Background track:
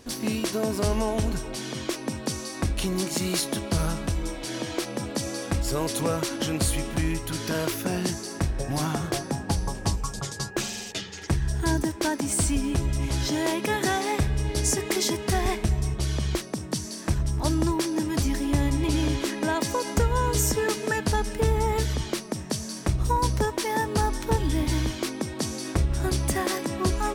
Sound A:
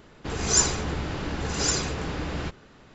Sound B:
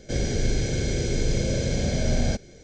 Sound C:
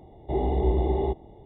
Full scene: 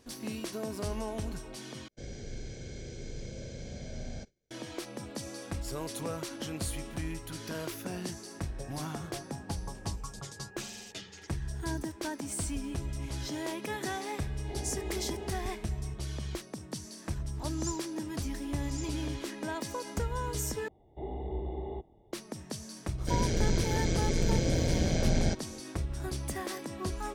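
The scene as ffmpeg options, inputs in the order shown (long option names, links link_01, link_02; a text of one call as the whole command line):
ffmpeg -i bed.wav -i cue0.wav -i cue1.wav -i cue2.wav -filter_complex "[2:a]asplit=2[link_01][link_02];[3:a]asplit=2[link_03][link_04];[0:a]volume=-10.5dB[link_05];[link_01]agate=range=-33dB:threshold=-37dB:ratio=3:release=100:detection=peak[link_06];[1:a]aderivative[link_07];[link_02]tremolo=f=170:d=0.71[link_08];[link_05]asplit=3[link_09][link_10][link_11];[link_09]atrim=end=1.884[link_12];[link_06]atrim=end=2.63,asetpts=PTS-STARTPTS,volume=-17.5dB[link_13];[link_10]atrim=start=4.506:end=20.684[link_14];[link_04]atrim=end=1.45,asetpts=PTS-STARTPTS,volume=-13dB[link_15];[link_11]atrim=start=22.126[link_16];[link_03]atrim=end=1.45,asetpts=PTS-STARTPTS,volume=-16dB,afade=type=in:duration=0.004:curve=hsin,afade=type=out:start_time=1.446:duration=0.004:curve=hsin,adelay=14190[link_17];[link_07]atrim=end=2.94,asetpts=PTS-STARTPTS,volume=-18dB,afade=type=in:duration=0.004:curve=hsin,afade=type=out:start_time=2.936:duration=0.004:curve=hsin,adelay=17100[link_18];[link_08]atrim=end=2.63,asetpts=PTS-STARTPTS,volume=-1dB,afade=type=in:duration=0.004:curve=hsin,afade=type=out:start_time=2.626:duration=0.004:curve=hsin,adelay=22980[link_19];[link_12][link_13]acrossfade=duration=0.004:curve1=hsin:curve2=hsin[link_20];[link_20][link_14]acrossfade=duration=0.004:curve1=hsin:curve2=hsin[link_21];[link_21][link_15]acrossfade=duration=0.004:curve1=hsin:curve2=hsin[link_22];[link_22][link_16]acrossfade=duration=0.004:curve1=hsin:curve2=hsin[link_23];[link_23][link_17][link_18][link_19]amix=inputs=4:normalize=0" out.wav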